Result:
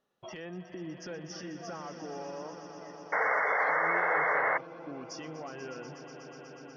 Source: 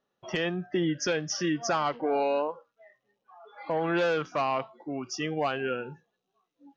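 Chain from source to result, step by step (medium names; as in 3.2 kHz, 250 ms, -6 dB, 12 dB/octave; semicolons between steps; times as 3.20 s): low-pass that closes with the level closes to 1.7 kHz, closed at -24 dBFS; compression 3:1, threshold -41 dBFS, peak gain reduction 13 dB; peak limiter -34 dBFS, peak gain reduction 8.5 dB; on a send: echo with a slow build-up 122 ms, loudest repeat 5, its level -12.5 dB; on the sum: painted sound noise, 3.12–4.58 s, 410–2200 Hz -28 dBFS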